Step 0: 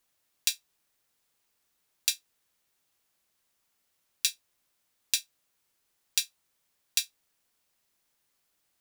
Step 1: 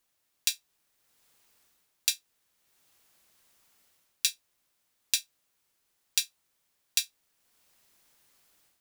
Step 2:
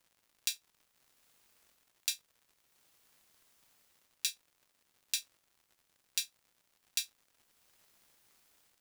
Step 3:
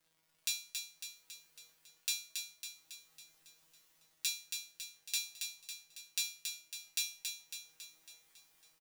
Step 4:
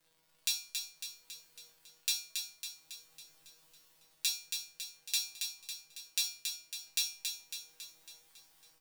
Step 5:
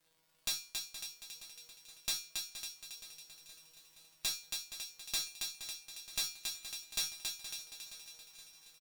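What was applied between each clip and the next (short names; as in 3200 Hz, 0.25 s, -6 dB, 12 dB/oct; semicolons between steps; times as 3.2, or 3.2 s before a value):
AGC gain up to 10.5 dB; gain -1 dB
limiter -6.5 dBFS, peak gain reduction 5 dB; crackle 150/s -52 dBFS; gain -3 dB
resonator 160 Hz, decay 0.38 s, harmonics all, mix 90%; on a send: feedback echo 0.276 s, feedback 55%, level -5.5 dB; on the sum: gain +9 dB
shoebox room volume 130 m³, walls furnished, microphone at 0.71 m; gain +3 dB
tube stage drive 28 dB, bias 0.55; feedback echo 0.471 s, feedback 57%, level -12 dB; gain +1 dB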